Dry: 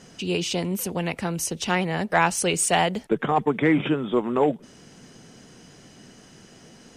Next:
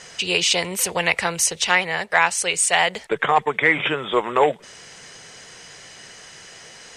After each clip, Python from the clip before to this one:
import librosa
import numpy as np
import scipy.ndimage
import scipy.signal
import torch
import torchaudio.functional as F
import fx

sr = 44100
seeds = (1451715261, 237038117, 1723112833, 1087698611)

y = fx.graphic_eq(x, sr, hz=(250, 500, 1000, 2000, 4000, 8000), db=(-11, 6, 6, 12, 8, 11))
y = fx.rider(y, sr, range_db=4, speed_s=0.5)
y = y * 10.0 ** (-4.0 / 20.0)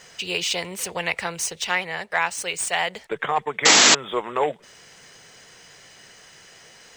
y = scipy.signal.medfilt(x, 3)
y = fx.spec_paint(y, sr, seeds[0], shape='noise', start_s=3.65, length_s=0.3, low_hz=200.0, high_hz=7800.0, level_db=-8.0)
y = y * 10.0 ** (-5.5 / 20.0)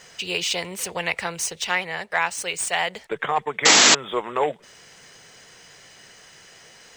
y = x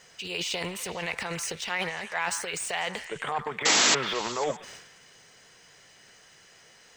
y = fx.transient(x, sr, attack_db=-1, sustain_db=11)
y = fx.echo_stepped(y, sr, ms=124, hz=1300.0, octaves=0.7, feedback_pct=70, wet_db=-8.5)
y = y * 10.0 ** (-7.5 / 20.0)